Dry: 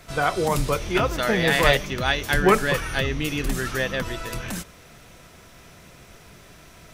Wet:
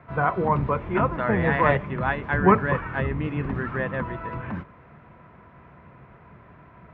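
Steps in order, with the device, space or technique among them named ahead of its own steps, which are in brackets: sub-octave bass pedal (octaver, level -2 dB; speaker cabinet 66–2000 Hz, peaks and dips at 140 Hz +5 dB, 210 Hz +3 dB, 1000 Hz +9 dB); gain -2.5 dB

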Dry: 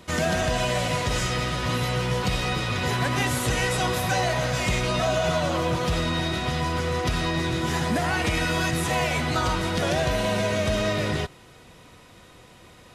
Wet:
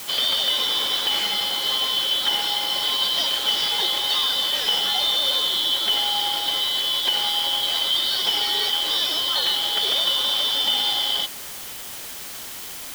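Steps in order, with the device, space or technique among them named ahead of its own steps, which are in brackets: split-band scrambled radio (four-band scrambler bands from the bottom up 3412; BPF 360–3400 Hz; white noise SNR 12 dB); gain +5 dB

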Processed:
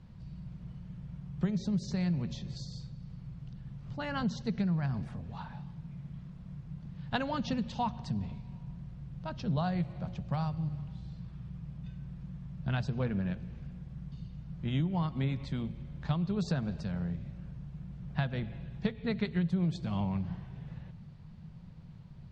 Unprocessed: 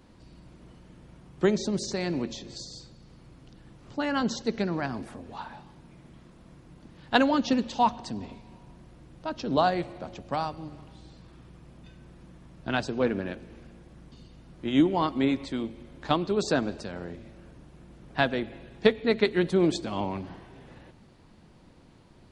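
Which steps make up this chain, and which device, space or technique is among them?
jukebox (LPF 5700 Hz 12 dB/oct; resonant low shelf 220 Hz +10.5 dB, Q 3; compressor 4:1, threshold -22 dBFS, peak gain reduction 10 dB); gain -6 dB

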